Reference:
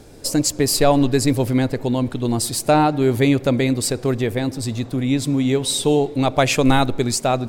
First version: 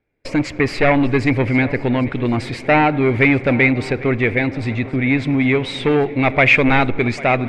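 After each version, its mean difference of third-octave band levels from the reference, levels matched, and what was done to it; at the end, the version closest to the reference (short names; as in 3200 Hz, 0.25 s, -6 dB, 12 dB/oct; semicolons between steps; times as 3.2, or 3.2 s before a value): 7.0 dB: soft clip -13.5 dBFS, distortion -13 dB; gate -30 dBFS, range -34 dB; synth low-pass 2200 Hz, resonance Q 6.4; swung echo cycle 1.064 s, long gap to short 3:1, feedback 33%, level -19 dB; gain +3.5 dB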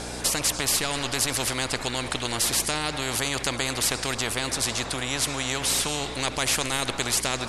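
12.0 dB: steep low-pass 11000 Hz 48 dB/oct; limiter -9.5 dBFS, peak gain reduction 7.5 dB; hum 60 Hz, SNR 17 dB; spectral compressor 4:1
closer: first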